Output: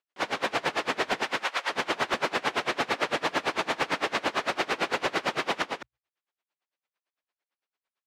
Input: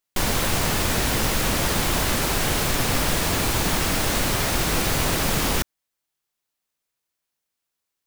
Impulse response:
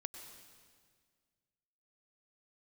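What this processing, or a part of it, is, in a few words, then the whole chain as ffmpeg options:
helicopter radio: -filter_complex "[0:a]bandreject=f=60:t=h:w=6,bandreject=f=120:t=h:w=6,asettb=1/sr,asplit=3[s0][s1][s2];[s0]atrim=end=1.234[s3];[s1]atrim=start=1.23:end=1.7,asetpts=PTS-STARTPTS,afade=t=in:d=0.004:c=qsin,afade=t=out:st=0.466:d=0.004:c=qsin,highpass=730[s4];[s2]atrim=start=1.696[s5];[s3][s4]acrossfade=d=0.004:c1=hsin:c2=qsin[s6];[s6][s5]acrossfade=d=0.004:c1=qsin:c2=hsin,highpass=390,lowpass=2900,aecho=1:1:204:0.631,aeval=exprs='val(0)*pow(10,-26*(0.5-0.5*cos(2*PI*8.9*n/s))/20)':c=same,asoftclip=type=hard:threshold=0.0891,volume=1.5"

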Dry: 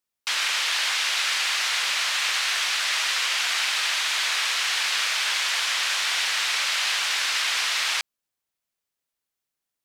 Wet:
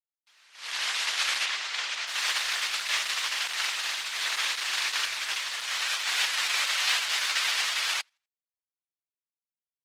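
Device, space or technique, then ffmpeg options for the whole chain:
video call: -filter_complex "[0:a]asplit=3[s0][s1][s2];[s0]afade=t=out:st=1.45:d=0.02[s3];[s1]lowpass=6600,afade=t=in:st=1.45:d=0.02,afade=t=out:st=2.06:d=0.02[s4];[s2]afade=t=in:st=2.06:d=0.02[s5];[s3][s4][s5]amix=inputs=3:normalize=0,highpass=160,aecho=1:1:83|166|249:0.158|0.0539|0.0183,dynaudnorm=f=320:g=3:m=3.16,agate=range=0.0141:threshold=0.224:ratio=16:detection=peak" -ar 48000 -c:a libopus -b:a 16k

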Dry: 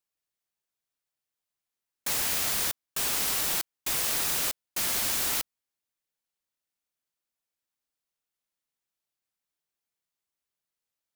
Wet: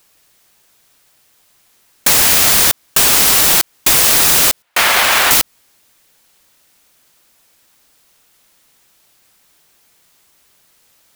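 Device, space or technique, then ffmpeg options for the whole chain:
loud club master: -filter_complex "[0:a]asettb=1/sr,asplit=3[s0][s1][s2];[s0]atrim=end=4.624[s3];[s1]atrim=start=4.62:end=5.31,asetpts=PTS-STARTPTS,afade=t=in:d=0.004:c=qsin,afade=t=out:st=0.686:d=0.004:c=qsin,acrossover=split=550 3100:gain=0.158 1 0.178[s4][s5][s6];[s4][s5][s6]amix=inputs=3:normalize=0[s7];[s2]atrim=start=5.306[s8];[s3][s7]acrossfade=d=0.004:c1=hsin:c2=qsin[s9];[s9][s8]acrossfade=d=0.004:c1=qsin:c2=hsin,acompressor=threshold=0.0282:ratio=3,asoftclip=type=hard:threshold=0.0562,alimiter=level_in=56.2:limit=0.891:release=50:level=0:latency=1,volume=0.841"

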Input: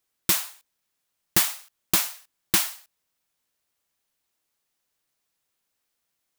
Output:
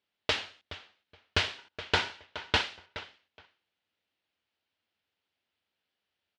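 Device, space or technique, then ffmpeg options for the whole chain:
ring modulator pedal into a guitar cabinet: -filter_complex "[0:a]asettb=1/sr,asplit=3[s0][s1][s2];[s0]atrim=end=1.584[s3];[s1]atrim=start=1.58:end=2.62,asetpts=PTS-STARTPTS,afade=t=in:d=0.004:c=qsin,afade=t=out:st=1.036:d=0.004:c=qsin,equalizer=f=1200:t=o:w=0.26:g=13[s4];[s2]atrim=start=2.616[s5];[s3][s4]acrossfade=d=0.004:c1=hsin:c2=qsin[s6];[s6][s5]acrossfade=d=0.004:c1=qsin:c2=hsin,asplit=2[s7][s8];[s8]adelay=421,lowpass=f=3500:p=1,volume=0.224,asplit=2[s9][s10];[s10]adelay=421,lowpass=f=3500:p=1,volume=0.18[s11];[s7][s9][s11]amix=inputs=3:normalize=0,aeval=exprs='val(0)*sgn(sin(2*PI*270*n/s))':c=same,highpass=77,equalizer=f=92:t=q:w=4:g=7,equalizer=f=130:t=q:w=4:g=-8,equalizer=f=1100:t=q:w=4:g=-5,equalizer=f=3000:t=q:w=4:g=4,lowpass=f=4100:w=0.5412,lowpass=f=4100:w=1.3066,volume=0.891"

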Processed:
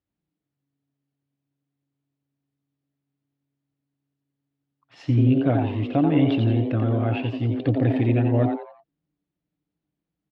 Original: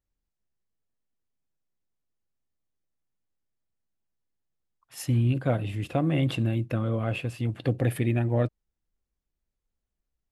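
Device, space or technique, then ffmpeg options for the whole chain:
frequency-shifting delay pedal into a guitar cabinet: -filter_complex "[0:a]asplit=5[s0][s1][s2][s3][s4];[s1]adelay=87,afreqshift=140,volume=0.501[s5];[s2]adelay=174,afreqshift=280,volume=0.176[s6];[s3]adelay=261,afreqshift=420,volume=0.0617[s7];[s4]adelay=348,afreqshift=560,volume=0.0214[s8];[s0][s5][s6][s7][s8]amix=inputs=5:normalize=0,highpass=86,equalizer=f=110:t=q:w=4:g=7,equalizer=f=290:t=q:w=4:g=10,equalizer=f=690:t=q:w=4:g=4,lowpass=f=4100:w=0.5412,lowpass=f=4100:w=1.3066"

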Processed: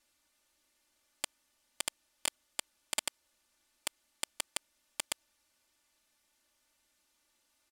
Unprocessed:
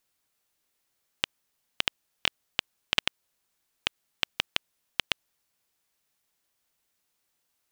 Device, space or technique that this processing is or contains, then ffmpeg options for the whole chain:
overflowing digital effects unit: -af "aecho=1:1:3.4:0.99,aeval=exprs='(mod(7.94*val(0)+1,2)-1)/7.94':c=same,lowpass=11000,volume=1.19"

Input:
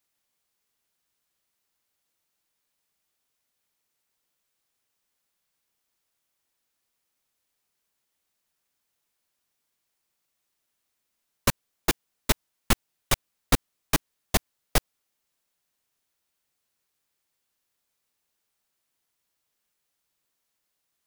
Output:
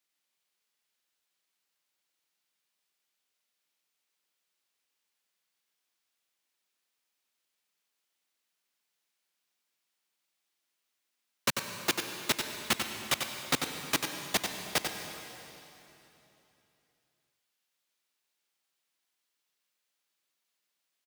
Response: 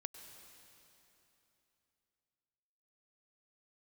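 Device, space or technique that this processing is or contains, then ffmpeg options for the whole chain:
PA in a hall: -filter_complex "[0:a]highpass=170,equalizer=f=3100:t=o:w=2.4:g=6,aecho=1:1:93:0.473[s0];[1:a]atrim=start_sample=2205[s1];[s0][s1]afir=irnorm=-1:irlink=0,volume=0.708"

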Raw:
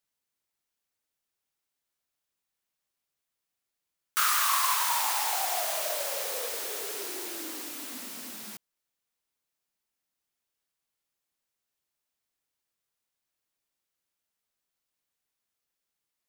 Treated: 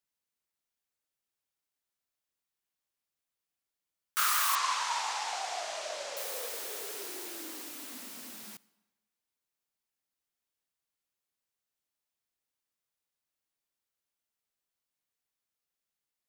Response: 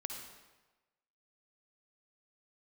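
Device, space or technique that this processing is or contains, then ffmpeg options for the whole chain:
keyed gated reverb: -filter_complex "[0:a]asplit=3[s0][s1][s2];[1:a]atrim=start_sample=2205[s3];[s1][s3]afir=irnorm=-1:irlink=0[s4];[s2]apad=whole_len=718009[s5];[s4][s5]sidechaingate=range=0.316:threshold=0.0447:ratio=16:detection=peak,volume=0.501[s6];[s0][s6]amix=inputs=2:normalize=0,asettb=1/sr,asplit=3[s7][s8][s9];[s7]atrim=end=4.554[s10];[s8]atrim=start=4.55:end=6.17,asetpts=PTS-STARTPTS,afade=t=in:d=0.004:c=qsin,afade=t=out:st=1.616:d=0.004:c=qsin,lowpass=f=7000:w=0.5412,lowpass=f=7000:w=1.3066[s11];[s9]atrim=start=6.166[s12];[s10][s11]acrossfade=d=0.004:c1=hsin:c2=qsin[s13];[s13][s12]acrossfade=d=0.004:c1=qsin:c2=hsin,volume=0.531"

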